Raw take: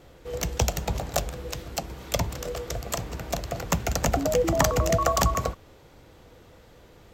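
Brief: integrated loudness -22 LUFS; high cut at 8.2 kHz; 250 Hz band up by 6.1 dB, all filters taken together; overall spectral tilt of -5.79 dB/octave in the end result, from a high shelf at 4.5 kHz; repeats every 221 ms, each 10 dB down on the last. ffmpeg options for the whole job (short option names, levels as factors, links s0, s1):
-af "lowpass=8200,equalizer=f=250:t=o:g=8.5,highshelf=f=4500:g=-6.5,aecho=1:1:221|442|663|884:0.316|0.101|0.0324|0.0104,volume=1.58"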